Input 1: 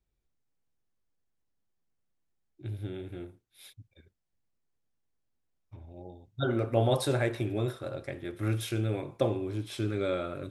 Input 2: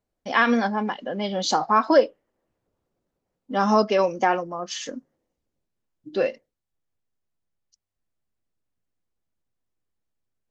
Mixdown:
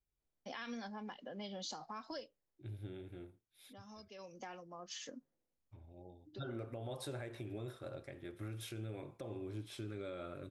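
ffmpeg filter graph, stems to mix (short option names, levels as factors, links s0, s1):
-filter_complex "[0:a]acompressor=threshold=0.0398:ratio=6,volume=0.335,asplit=2[s0][s1];[1:a]acrossover=split=140|3000[s2][s3][s4];[s3]acompressor=threshold=0.0282:ratio=6[s5];[s2][s5][s4]amix=inputs=3:normalize=0,adelay=200,volume=0.562,afade=t=out:st=2.22:d=0.35:silence=0.334965,afade=t=in:st=4.14:d=0.22:silence=0.375837[s6];[s1]apad=whole_len=472236[s7];[s6][s7]sidechaincompress=threshold=0.00158:ratio=8:attack=7.6:release=674[s8];[s0][s8]amix=inputs=2:normalize=0,alimiter=level_in=3.35:limit=0.0631:level=0:latency=1:release=118,volume=0.299"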